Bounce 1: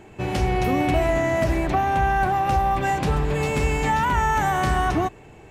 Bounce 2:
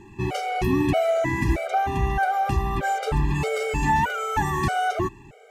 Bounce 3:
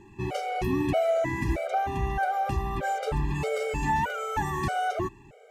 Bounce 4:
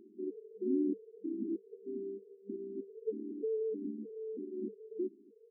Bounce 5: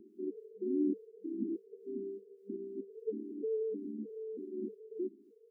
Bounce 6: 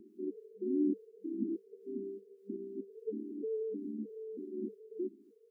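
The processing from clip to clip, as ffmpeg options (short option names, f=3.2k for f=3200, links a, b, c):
-af "afftfilt=real='re*gt(sin(2*PI*1.6*pts/sr)*(1-2*mod(floor(b*sr/1024/400),2)),0)':imag='im*gt(sin(2*PI*1.6*pts/sr)*(1-2*mod(floor(b*sr/1024/400),2)),0)':win_size=1024:overlap=0.75,volume=1.5dB"
-af "equalizer=f=550:t=o:w=0.44:g=7,volume=-5.5dB"
-af "afftfilt=real='re*between(b*sr/4096,200,480)':imag='im*between(b*sr/4096,200,480)':win_size=4096:overlap=0.75,volume=-3.5dB"
-filter_complex "[0:a]acrossover=split=400[a][b];[a]aeval=exprs='val(0)*(1-0.7/2+0.7/2*cos(2*PI*3.5*n/s))':c=same[c];[b]aeval=exprs='val(0)*(1-0.7/2-0.7/2*cos(2*PI*3.5*n/s))':c=same[d];[c][d]amix=inputs=2:normalize=0,volume=3.5dB"
-af "equalizer=f=460:t=o:w=0.77:g=-4,volume=2dB"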